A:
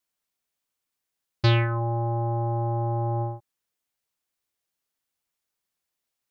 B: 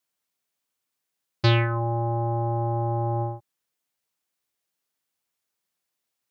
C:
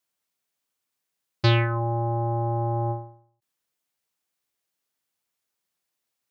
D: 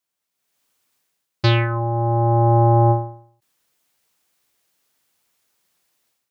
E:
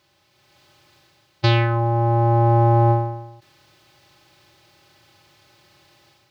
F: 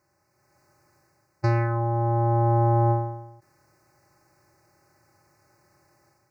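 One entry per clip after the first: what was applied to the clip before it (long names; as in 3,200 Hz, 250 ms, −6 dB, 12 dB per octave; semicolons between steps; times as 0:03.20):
high-pass filter 93 Hz; level +1.5 dB
every ending faded ahead of time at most 110 dB per second
automatic gain control gain up to 14 dB; level −1 dB
compressor on every frequency bin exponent 0.6; level −1.5 dB
Butterworth band-reject 3,300 Hz, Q 0.87; level −5 dB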